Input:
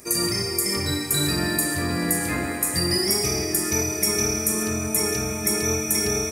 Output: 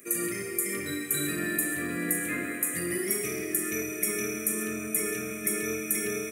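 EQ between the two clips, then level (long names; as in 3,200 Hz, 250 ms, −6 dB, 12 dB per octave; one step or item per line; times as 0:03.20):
high-pass filter 240 Hz 12 dB per octave
phaser with its sweep stopped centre 2,100 Hz, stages 4
−2.5 dB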